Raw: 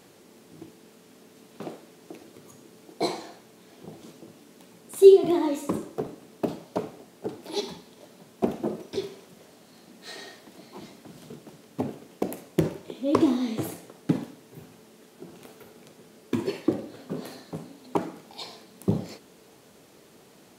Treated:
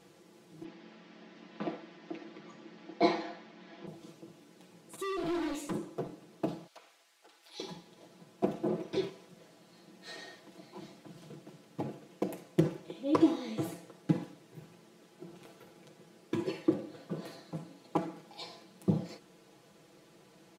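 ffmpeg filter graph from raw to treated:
ffmpeg -i in.wav -filter_complex "[0:a]asettb=1/sr,asplit=3[link_01][link_02][link_03];[link_01]atrim=end=0.644[link_04];[link_02]atrim=start=0.64:end=3.87,asetpts=PTS-STARTPTS,afade=type=in:duration=0.004:curve=qsin,afade=type=out:start_time=3.226:duration=0.004:curve=qsin,highpass=frequency=190:width=0.5412,highpass=frequency=190:width=1.3066,equalizer=frequency=210:width_type=q:width=4:gain=4,equalizer=frequency=430:width_type=q:width=4:gain=-7,equalizer=frequency=1900:width_type=q:width=4:gain=4,equalizer=frequency=4100:width_type=q:width=4:gain=-3,lowpass=frequency=4800:width=0.5412,lowpass=frequency=4800:width=1.3066,acontrast=64[link_05];[link_03]atrim=start=3.866[link_06];[link_04][link_05]acrossfade=duration=0.004:curve1=hsin:curve2=qsin[link_07];[link_07][link_06]acrossfade=duration=0.004:curve1=qsin:curve2=hsin,asettb=1/sr,asplit=3[link_08][link_09][link_10];[link_08]atrim=end=4.964[link_11];[link_09]atrim=start=4.96:end=5.72,asetpts=PTS-STARTPTS,afade=type=in:duration=0.004:curve=qsin,afade=type=out:start_time=0.756:duration=0.004:curve=qsin,acompressor=threshold=-21dB:ratio=2:attack=3.2:release=140:knee=1:detection=peak,asoftclip=type=hard:threshold=-28dB,adynamicequalizer=threshold=0.00355:dfrequency=1900:dqfactor=0.7:tfrequency=1900:tqfactor=0.7:attack=5:release=100:ratio=0.375:range=2.5:mode=boostabove:tftype=highshelf[link_12];[link_10]atrim=start=5.716[link_13];[link_11][link_12]acrossfade=duration=0.004:curve1=hsin:curve2=qsin[link_14];[link_14][link_13]acrossfade=duration=0.004:curve1=qsin:curve2=hsin,asettb=1/sr,asplit=3[link_15][link_16][link_17];[link_15]atrim=end=6.674[link_18];[link_16]atrim=start=6.67:end=7.6,asetpts=PTS-STARTPTS,afade=type=in:duration=0.004:curve=qsin,afade=type=out:start_time=0.926:duration=0.004:curve=qsin,highpass=1500,acompressor=threshold=-51dB:ratio=1.5:attack=3.2:release=140:knee=1:detection=peak[link_19];[link_17]atrim=start=7.596[link_20];[link_18][link_19]acrossfade=duration=0.004:curve1=hsin:curve2=qsin[link_21];[link_21][link_20]acrossfade=duration=0.004:curve1=qsin:curve2=hsin,asettb=1/sr,asplit=3[link_22][link_23][link_24];[link_22]atrim=end=8.684[link_25];[link_23]atrim=start=8.68:end=9.1,asetpts=PTS-STARTPTS,afade=type=in:duration=0.004:curve=qsin,afade=type=out:start_time=0.416:duration=0.004:curve=qsin,bass=frequency=250:gain=0,treble=frequency=4000:gain=-7,acontrast=37[link_26];[link_24]atrim=start=9.096[link_27];[link_25][link_26]acrossfade=duration=0.004:curve1=hsin:curve2=qsin[link_28];[link_28][link_27]acrossfade=duration=0.004:curve1=qsin:curve2=hsin,highshelf=frequency=10000:gain=-11,aecho=1:1:6:0.77,volume=-7dB" out.wav

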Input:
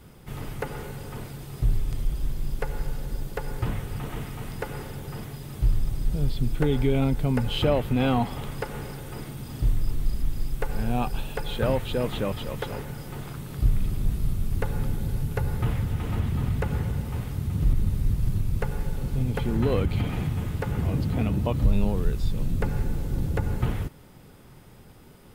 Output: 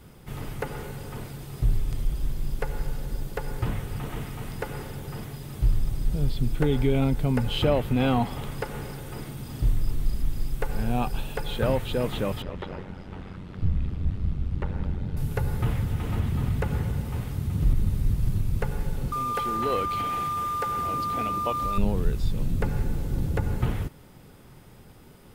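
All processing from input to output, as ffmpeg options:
ffmpeg -i in.wav -filter_complex "[0:a]asettb=1/sr,asplit=3[link_01][link_02][link_03];[link_01]atrim=end=12.424[link_04];[link_02]atrim=start=12.42:end=15.17,asetpts=PTS-STARTPTS,afade=type=in:duration=0.004:curve=qsin,afade=type=out:start_time=2.746:duration=0.004:curve=qsin,aeval=exprs='val(0)*sin(2*PI*46*n/s)':channel_layout=same,lowpass=3300[link_05];[link_03]atrim=start=15.166[link_06];[link_04][link_05]acrossfade=duration=0.004:curve1=hsin:curve2=qsin[link_07];[link_07][link_06]acrossfade=duration=0.004:curve1=qsin:curve2=hsin,asettb=1/sr,asplit=3[link_08][link_09][link_10];[link_08]atrim=end=19.124[link_11];[link_09]atrim=start=19.12:end=21.78,asetpts=PTS-STARTPTS,afade=type=in:duration=0.004:curve=qsin,afade=type=out:start_time=2.656:duration=0.004:curve=qsin,aeval=exprs='val(0)+0.0562*sin(2*PI*1200*n/s)':channel_layout=same,bass=frequency=250:gain=-14,treble=frequency=4000:gain=5,aeval=exprs='sgn(val(0))*max(abs(val(0))-0.00422,0)':channel_layout=same[link_12];[link_10]atrim=start=21.776[link_13];[link_11][link_12]acrossfade=duration=0.004:curve1=hsin:curve2=qsin[link_14];[link_14][link_13]acrossfade=duration=0.004:curve1=qsin:curve2=hsin" out.wav

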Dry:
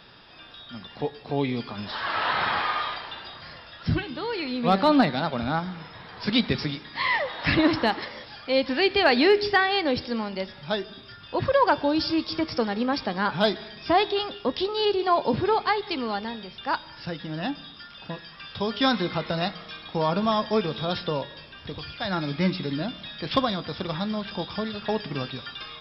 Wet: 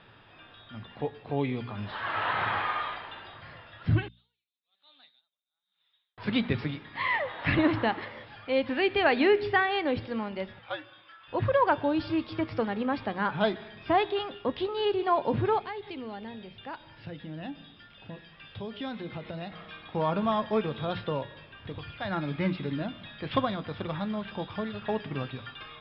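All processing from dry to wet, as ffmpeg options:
ffmpeg -i in.wav -filter_complex "[0:a]asettb=1/sr,asplit=3[link_01][link_02][link_03];[link_01]atrim=end=4.084[link_04];[link_02]atrim=start=4.08:end=6.18,asetpts=PTS-STARTPTS,afade=type=in:duration=0.004:curve=qsin,afade=type=out:start_time=2.096:duration=0.004:curve=qsin,bandpass=frequency=3700:width_type=q:width=13,flanger=delay=1.5:depth=7.6:regen=69:speed=1.7:shape=sinusoidal,aeval=exprs='val(0)*pow(10,-33*(0.5-0.5*cos(2*PI*1.1*n/s))/20)':channel_layout=same[link_05];[link_03]atrim=start=6.176[link_06];[link_04][link_05]acrossfade=duration=0.004:curve1=hsin:curve2=qsin[link_07];[link_07][link_06]acrossfade=duration=0.004:curve1=qsin:curve2=hsin,asettb=1/sr,asplit=3[link_08][link_09][link_10];[link_08]atrim=end=10.594[link_11];[link_09]atrim=start=10.59:end=11.28,asetpts=PTS-STARTPTS,afade=type=in:duration=0.004:curve=qsin,afade=type=out:start_time=0.686:duration=0.004:curve=qsin,highpass=790,lowpass=4600,afreqshift=-78[link_12];[link_10]atrim=start=11.276[link_13];[link_11][link_12]acrossfade=duration=0.004:curve1=hsin:curve2=qsin[link_14];[link_14][link_13]acrossfade=duration=0.004:curve1=qsin:curve2=hsin,asettb=1/sr,asplit=3[link_15][link_16][link_17];[link_15]atrim=end=15.594[link_18];[link_16]atrim=start=15.59:end=19.52,asetpts=PTS-STARTPTS,afade=type=in:duration=0.004:curve=qsin,afade=type=out:start_time=3.926:duration=0.004:curve=qsin,equalizer=frequency=1200:width_type=o:width=1.1:gain=-7.5,acompressor=threshold=-34dB:ratio=2:attack=3.2:release=140:knee=1:detection=peak[link_19];[link_17]atrim=start=19.516[link_20];[link_18][link_19]acrossfade=duration=0.004:curve1=hsin:curve2=qsin[link_21];[link_21][link_20]acrossfade=duration=0.004:curve1=qsin:curve2=hsin,lowpass=frequency=3100:width=0.5412,lowpass=frequency=3100:width=1.3066,equalizer=frequency=110:width=5.2:gain=11.5,bandreject=frequency=60:width_type=h:width=6,bandreject=frequency=120:width_type=h:width=6,bandreject=frequency=180:width_type=h:width=6,bandreject=frequency=240:width_type=h:width=6,volume=-3.5dB" out.wav

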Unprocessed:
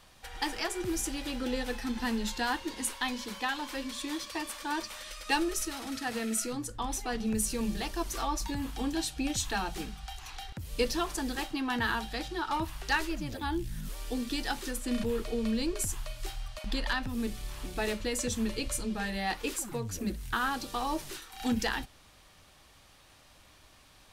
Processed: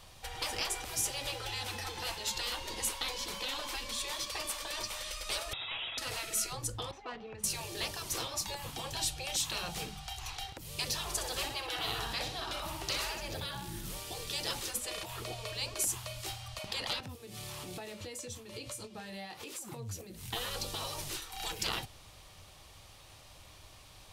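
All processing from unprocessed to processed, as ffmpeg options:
ffmpeg -i in.wav -filter_complex "[0:a]asettb=1/sr,asplit=3[link_01][link_02][link_03];[link_01]atrim=end=5.534[link_04];[link_02]atrim=start=5.53:end=5.98,asetpts=PTS-STARTPTS,afade=type=in:duration=0.004:curve=qsin,afade=type=out:start_time=0.446:duration=0.004:curve=qsin,highpass=69,equalizer=frequency=250:width_type=o:width=2.6:gain=14,lowpass=frequency=3300:width_type=q:width=0.5098,lowpass=frequency=3300:width_type=q:width=0.6013,lowpass=frequency=3300:width_type=q:width=0.9,lowpass=frequency=3300:width_type=q:width=2.563,afreqshift=-3900[link_05];[link_03]atrim=start=5.976[link_06];[link_04][link_05]acrossfade=duration=0.004:curve1=hsin:curve2=qsin[link_07];[link_07][link_06]acrossfade=duration=0.004:curve1=qsin:curve2=hsin,asettb=1/sr,asplit=3[link_08][link_09][link_10];[link_08]atrim=end=6.914[link_11];[link_09]atrim=start=6.91:end=7.44,asetpts=PTS-STARTPTS,afade=type=in:duration=0.004:curve=qsin,afade=type=out:start_time=0.526:duration=0.004:curve=qsin,equalizer=frequency=9200:width=0.62:gain=-13,adynamicsmooth=sensitivity=2:basefreq=2000,highpass=frequency=900:poles=1[link_12];[link_10]atrim=start=7.436[link_13];[link_11][link_12]acrossfade=duration=0.004:curve1=hsin:curve2=qsin[link_14];[link_14][link_13]acrossfade=duration=0.004:curve1=qsin:curve2=hsin,asettb=1/sr,asplit=3[link_15][link_16][link_17];[link_15]atrim=end=11.064[link_18];[link_16]atrim=start=11.06:end=14,asetpts=PTS-STARTPTS,afade=type=in:duration=0.004:curve=qsin,afade=type=out:start_time=2.936:duration=0.004:curve=qsin,highpass=58,aecho=1:1:63|126|189|252|315|378|441:0.335|0.188|0.105|0.0588|0.0329|0.0184|0.0103,atrim=end_sample=129654[link_19];[link_17]atrim=start=13.996[link_20];[link_18][link_19]acrossfade=duration=0.004:curve1=hsin:curve2=qsin[link_21];[link_21][link_20]acrossfade=duration=0.004:curve1=qsin:curve2=hsin,asettb=1/sr,asplit=3[link_22][link_23][link_24];[link_22]atrim=end=17.004[link_25];[link_23]atrim=start=17:end=20.26,asetpts=PTS-STARTPTS,afade=type=in:duration=0.004:curve=qsin,afade=type=out:start_time=3.256:duration=0.004:curve=qsin,highpass=frequency=95:width=0.5412,highpass=frequency=95:width=1.3066,acompressor=threshold=-42dB:ratio=12:attack=3.2:release=140:knee=1:detection=peak,asplit=2[link_26][link_27];[link_27]adelay=22,volume=-12.5dB[link_28];[link_26][link_28]amix=inputs=2:normalize=0,atrim=end_sample=143766[link_29];[link_24]atrim=start=20.256[link_30];[link_25][link_29]acrossfade=duration=0.004:curve1=hsin:curve2=qsin[link_31];[link_31][link_30]acrossfade=duration=0.004:curve1=qsin:curve2=hsin,afftfilt=real='re*lt(hypot(re,im),0.0631)':imag='im*lt(hypot(re,im),0.0631)':win_size=1024:overlap=0.75,equalizer=frequency=100:width_type=o:width=0.67:gain=5,equalizer=frequency=250:width_type=o:width=0.67:gain=-7,equalizer=frequency=1600:width_type=o:width=0.67:gain=-6,volume=4dB" out.wav

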